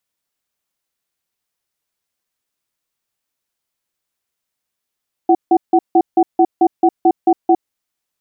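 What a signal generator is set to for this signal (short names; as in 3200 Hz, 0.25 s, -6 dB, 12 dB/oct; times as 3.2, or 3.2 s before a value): cadence 338 Hz, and 749 Hz, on 0.06 s, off 0.16 s, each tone -10 dBFS 2.39 s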